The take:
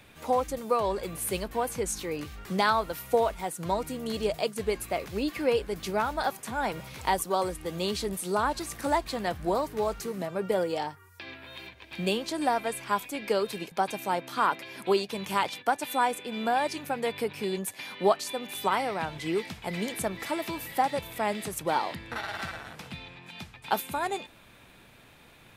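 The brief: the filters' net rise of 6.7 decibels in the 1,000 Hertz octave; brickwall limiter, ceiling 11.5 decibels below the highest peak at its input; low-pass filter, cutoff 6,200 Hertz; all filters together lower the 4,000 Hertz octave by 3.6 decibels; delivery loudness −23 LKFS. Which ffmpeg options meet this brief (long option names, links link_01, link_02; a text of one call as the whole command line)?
ffmpeg -i in.wav -af "lowpass=6200,equalizer=frequency=1000:width_type=o:gain=8.5,equalizer=frequency=4000:width_type=o:gain=-4.5,volume=7dB,alimiter=limit=-10.5dB:level=0:latency=1" out.wav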